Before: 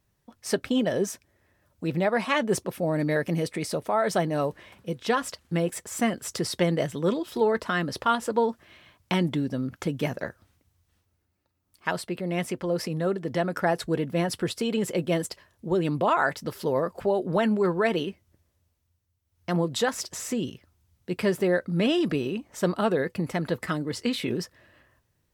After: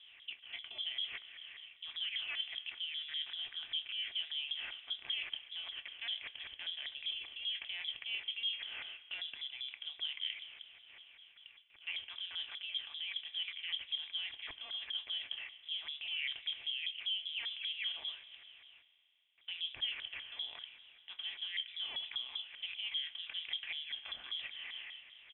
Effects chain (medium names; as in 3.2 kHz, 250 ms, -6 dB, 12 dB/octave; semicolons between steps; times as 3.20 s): spectral levelling over time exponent 0.6; doubling 27 ms -13.5 dB; in parallel at +2 dB: peak limiter -14.5 dBFS, peak gain reduction 9.5 dB; on the sum: feedback comb 150 Hz, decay 0.36 s, harmonics all, mix 40%; gate with hold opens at -39 dBFS; reverse; compression 6:1, threshold -29 dBFS, peak gain reduction 14 dB; reverse; LFO band-pass saw up 5.1 Hz 400–1600 Hz; spring tank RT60 3.1 s, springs 33 ms, chirp 25 ms, DRR 16.5 dB; frequency inversion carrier 3.7 kHz; trim -2.5 dB